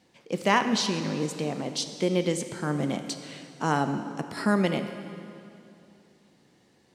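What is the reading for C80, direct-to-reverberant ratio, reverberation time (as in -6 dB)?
9.5 dB, 7.5 dB, 2.7 s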